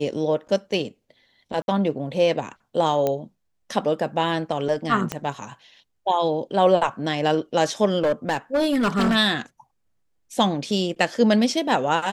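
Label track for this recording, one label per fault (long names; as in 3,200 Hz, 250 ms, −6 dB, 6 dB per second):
1.620000	1.680000	drop-out 61 ms
3.070000	3.070000	click −10 dBFS
5.120000	5.120000	click −11 dBFS
8.020000	9.160000	clipping −16.5 dBFS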